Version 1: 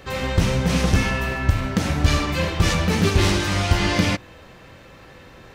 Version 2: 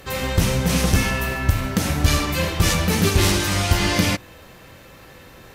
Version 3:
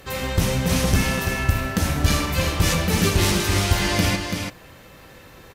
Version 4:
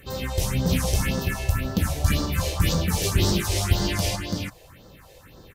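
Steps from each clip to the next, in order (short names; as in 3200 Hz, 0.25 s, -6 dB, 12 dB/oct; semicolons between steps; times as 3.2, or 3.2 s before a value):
bell 13000 Hz +14.5 dB 1.1 oct
echo 0.335 s -6 dB; gain -2 dB
phaser stages 4, 1.9 Hz, lowest notch 210–2400 Hz; gain -1.5 dB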